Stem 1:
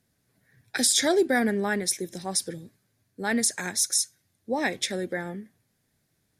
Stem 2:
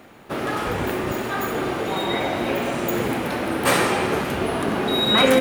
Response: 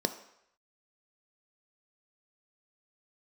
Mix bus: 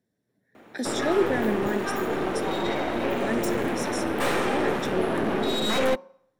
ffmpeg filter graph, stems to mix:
-filter_complex "[0:a]volume=-12.5dB,asplit=2[a][b];[b]volume=-3.5dB[c];[1:a]highpass=110,aeval=exprs='(tanh(12.6*val(0)+0.8)-tanh(0.8))/12.6':c=same,adelay=550,volume=1dB,asplit=2[d][e];[e]volume=-22dB[f];[2:a]atrim=start_sample=2205[g];[c][f]amix=inputs=2:normalize=0[h];[h][g]afir=irnorm=-1:irlink=0[i];[a][d][i]amix=inputs=3:normalize=0,highshelf=f=3.3k:g=-7.5,bandreject=f=181.9:t=h:w=4,bandreject=f=363.8:t=h:w=4,bandreject=f=545.7:t=h:w=4,bandreject=f=727.6:t=h:w=4,bandreject=f=909.5:t=h:w=4,bandreject=f=1.0914k:t=h:w=4"

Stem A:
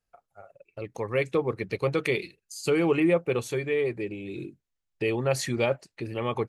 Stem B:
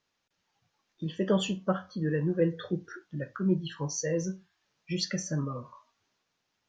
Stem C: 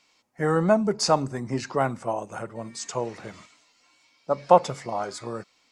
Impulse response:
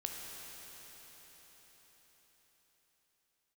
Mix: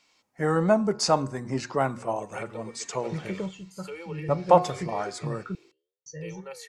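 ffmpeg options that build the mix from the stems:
-filter_complex "[0:a]highpass=540,flanger=delay=9.5:depth=8.6:regen=-87:speed=0.6:shape=sinusoidal,adelay=1200,volume=-10dB[a];[1:a]lowshelf=f=280:t=q:w=1.5:g=9.5,adelay=2100,volume=-4dB,asplit=3[b][c][d];[b]atrim=end=5.55,asetpts=PTS-STARTPTS,afade=t=out:st=5.546:d=0.004:c=hsin[e];[c]atrim=start=5.55:end=6.06,asetpts=PTS-STARTPTS,volume=0[f];[d]atrim=start=6.06,asetpts=PTS-STARTPTS,afade=t=in:d=0.004:c=hsin[g];[e][f][g]concat=n=3:v=0:a=1[h];[2:a]bandreject=f=120:t=h:w=4,bandreject=f=240:t=h:w=4,bandreject=f=360:t=h:w=4,bandreject=f=480:t=h:w=4,bandreject=f=600:t=h:w=4,bandreject=f=720:t=h:w=4,bandreject=f=840:t=h:w=4,bandreject=f=960:t=h:w=4,bandreject=f=1.08k:t=h:w=4,bandreject=f=1.2k:t=h:w=4,bandreject=f=1.32k:t=h:w=4,bandreject=f=1.44k:t=h:w=4,bandreject=f=1.56k:t=h:w=4,bandreject=f=1.68k:t=h:w=4,bandreject=f=1.8k:t=h:w=4,volume=-1dB,asplit=2[i][j];[j]apad=whole_len=387472[k];[h][k]sidechaingate=range=-10dB:threshold=-53dB:ratio=16:detection=peak[l];[a][l]amix=inputs=2:normalize=0,aecho=1:1:2.2:0.79,acompressor=threshold=-29dB:ratio=6,volume=0dB[m];[i][m]amix=inputs=2:normalize=0"

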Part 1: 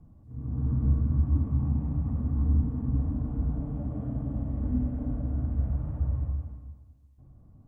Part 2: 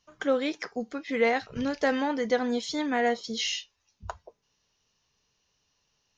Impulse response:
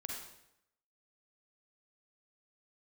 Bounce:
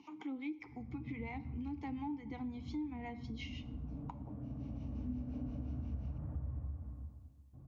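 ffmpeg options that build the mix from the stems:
-filter_complex "[0:a]adelay=350,volume=-1.5dB,asplit=2[a][b];[b]volume=-19.5dB[c];[1:a]acompressor=mode=upward:threshold=-26dB:ratio=2.5,acrossover=split=560[d][e];[d]aeval=exprs='val(0)*(1-0.7/2+0.7/2*cos(2*PI*5.7*n/s))':c=same[f];[e]aeval=exprs='val(0)*(1-0.7/2-0.7/2*cos(2*PI*5.7*n/s))':c=same[g];[f][g]amix=inputs=2:normalize=0,asplit=3[h][i][j];[h]bandpass=f=300:t=q:w=8,volume=0dB[k];[i]bandpass=f=870:t=q:w=8,volume=-6dB[l];[j]bandpass=f=2.24k:t=q:w=8,volume=-9dB[m];[k][l][m]amix=inputs=3:normalize=0,volume=3dB,asplit=3[n][o][p];[o]volume=-12dB[q];[p]apad=whole_len=354108[r];[a][r]sidechaincompress=threshold=-58dB:ratio=4:attack=21:release=890[s];[2:a]atrim=start_sample=2205[t];[c][q]amix=inputs=2:normalize=0[u];[u][t]afir=irnorm=-1:irlink=0[v];[s][n][v]amix=inputs=3:normalize=0,highpass=58,equalizer=f=240:t=o:w=0.44:g=2.5,acompressor=threshold=-41dB:ratio=3"

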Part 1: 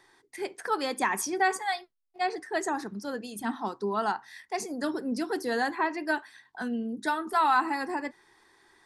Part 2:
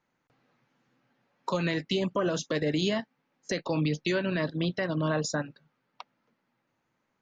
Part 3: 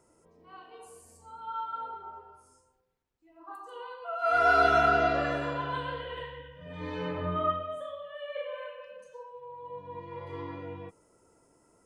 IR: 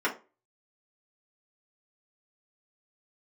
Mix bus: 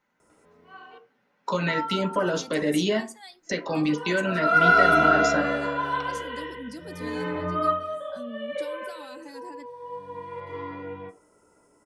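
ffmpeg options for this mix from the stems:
-filter_complex "[0:a]acrossover=split=330|3000[a][b][c];[b]acompressor=threshold=-44dB:ratio=6[d];[a][d][c]amix=inputs=3:normalize=0,adelay=1550,volume=-6dB[e];[1:a]volume=-0.5dB,asplit=2[f][g];[g]volume=-10dB[h];[2:a]adelay=200,volume=0.5dB,asplit=3[i][j][k];[i]atrim=end=0.98,asetpts=PTS-STARTPTS,afade=t=out:st=0.976:d=0.004:c=hsin[l];[j]atrim=start=0.98:end=1.68,asetpts=PTS-STARTPTS,volume=0[m];[k]atrim=start=1.68,asetpts=PTS-STARTPTS,afade=t=in:d=0.004:c=hsin[n];[l][m][n]concat=n=3:v=0:a=1,asplit=2[o][p];[p]volume=-11.5dB[q];[3:a]atrim=start_sample=2205[r];[h][q]amix=inputs=2:normalize=0[s];[s][r]afir=irnorm=-1:irlink=0[t];[e][f][o][t]amix=inputs=4:normalize=0"

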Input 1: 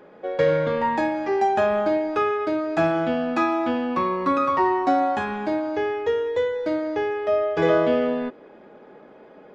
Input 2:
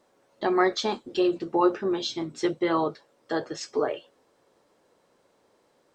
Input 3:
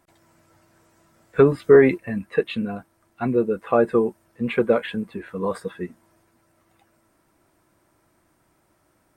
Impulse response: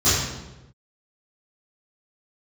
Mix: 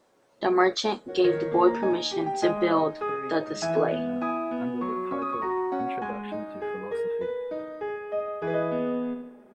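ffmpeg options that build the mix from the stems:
-filter_complex "[0:a]lowpass=f=1.8k:p=1,aecho=1:1:4.8:0.38,adelay=850,volume=-9.5dB,asplit=2[a][b];[b]volume=-7dB[c];[1:a]volume=1dB,asplit=2[d][e];[2:a]acompressor=threshold=-25dB:ratio=6,adelay=1400,volume=-10.5dB[f];[e]apad=whole_len=465924[g];[f][g]sidechaincompress=threshold=-37dB:ratio=8:attack=16:release=227[h];[c]aecho=0:1:73|146|219|292|365|438|511|584:1|0.52|0.27|0.141|0.0731|0.038|0.0198|0.0103[i];[a][d][h][i]amix=inputs=4:normalize=0"

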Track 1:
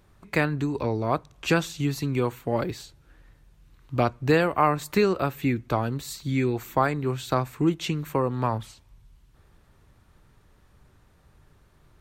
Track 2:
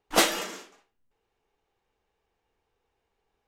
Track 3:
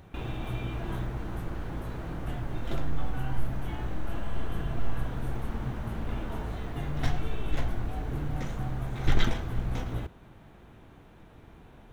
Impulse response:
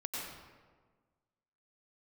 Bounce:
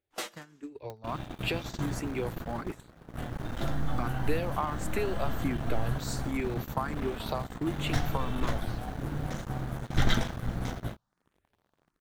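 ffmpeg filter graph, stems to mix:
-filter_complex "[0:a]acompressor=threshold=-24dB:ratio=16,asplit=2[a][b];[b]afreqshift=1.4[c];[a][c]amix=inputs=2:normalize=1,volume=-7.5dB[d];[1:a]flanger=delay=7.4:depth=8.7:regen=38:speed=0.18:shape=triangular,volume=-11.5dB[e];[2:a]equalizer=f=400:t=o:w=0.67:g=-8,equalizer=f=1k:t=o:w=0.67:g=-4,equalizer=f=2.5k:t=o:w=0.67:g=-7,acompressor=mode=upward:threshold=-34dB:ratio=2.5,aeval=exprs='sgn(val(0))*max(abs(val(0))-0.0119,0)':c=same,adelay=900,volume=-0.5dB[f];[d][e][f]amix=inputs=3:normalize=0,agate=range=-15dB:threshold=-37dB:ratio=16:detection=peak,lowshelf=f=100:g=-10,dynaudnorm=f=150:g=13:m=6.5dB"

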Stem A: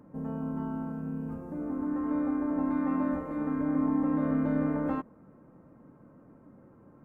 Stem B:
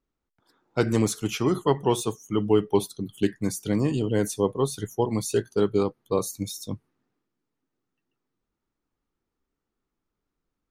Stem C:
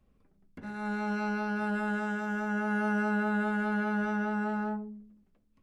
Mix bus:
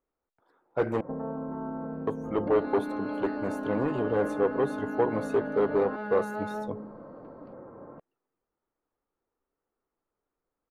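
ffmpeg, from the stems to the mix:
-filter_complex "[0:a]lowpass=2.2k,acompressor=threshold=-30dB:ratio=6,adelay=950,volume=3dB[a];[1:a]asoftclip=type=hard:threshold=-19.5dB,volume=-9dB,asplit=3[b][c][d];[b]atrim=end=1.01,asetpts=PTS-STARTPTS,afade=t=out:st=1.006:d=0.004:c=hsin[e];[c]atrim=start=1.01:end=2.07,asetpts=PTS-STARTPTS,volume=0[f];[d]atrim=start=2.07,asetpts=PTS-STARTPTS,afade=t=in:d=0.004:c=hsin[g];[e][f][g]concat=n=3:v=0:a=1[h];[2:a]lowpass=f=4.5k:t=q:w=12,acompressor=threshold=-37dB:ratio=2,adelay=1900,volume=0.5dB[i];[a][i]amix=inputs=2:normalize=0,adynamicequalizer=threshold=0.00447:dfrequency=1000:dqfactor=1.1:tfrequency=1000:tqfactor=1.1:attack=5:release=100:ratio=0.375:range=2.5:mode=cutabove:tftype=bell,acompressor=threshold=-36dB:ratio=6,volume=0dB[j];[h][j]amix=inputs=2:normalize=0,firequalizer=gain_entry='entry(190,0);entry(500,13);entry(5100,-13)':delay=0.05:min_phase=1"

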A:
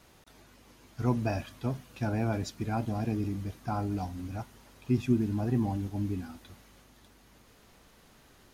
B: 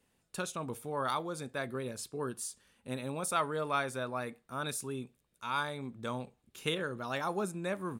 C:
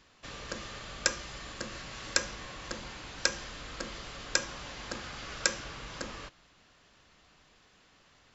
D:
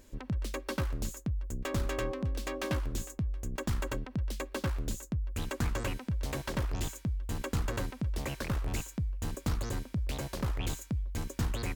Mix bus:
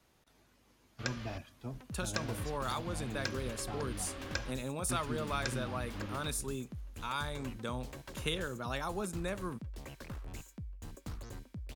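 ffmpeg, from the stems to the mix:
-filter_complex "[0:a]volume=-10.5dB,asplit=2[a][b];[1:a]adelay=1600,volume=1dB[c];[2:a]lowpass=3.6k,volume=-4dB,asplit=3[d][e][f];[d]atrim=end=1.38,asetpts=PTS-STARTPTS,afade=t=out:st=1.376:d=0.004:c=hsin[g];[e]atrim=start=1.38:end=2.14,asetpts=PTS-STARTPTS,volume=0[h];[f]atrim=start=2.14,asetpts=PTS-STARTPTS,afade=t=in:d=0.004:c=hsin[i];[g][h][i]concat=n=3:v=0:a=1[j];[3:a]adelay=1600,volume=-11.5dB[k];[b]apad=whole_len=367983[l];[j][l]sidechaingate=range=-39dB:threshold=-56dB:ratio=16:detection=peak[m];[a][c][m][k]amix=inputs=4:normalize=0,acrossover=split=150|3000[n][o][p];[o]acompressor=threshold=-38dB:ratio=2[q];[n][q][p]amix=inputs=3:normalize=0"

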